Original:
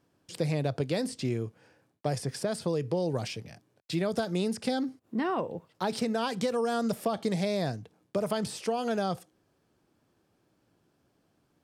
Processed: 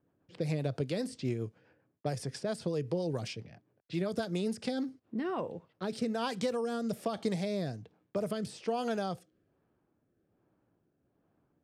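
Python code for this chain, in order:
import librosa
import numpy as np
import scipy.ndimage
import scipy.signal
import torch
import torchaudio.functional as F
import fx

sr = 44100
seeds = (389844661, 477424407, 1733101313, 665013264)

y = fx.env_lowpass(x, sr, base_hz=1600.0, full_db=-27.5)
y = fx.rotary_switch(y, sr, hz=7.5, then_hz=1.2, switch_at_s=4.44)
y = y * librosa.db_to_amplitude(-2.0)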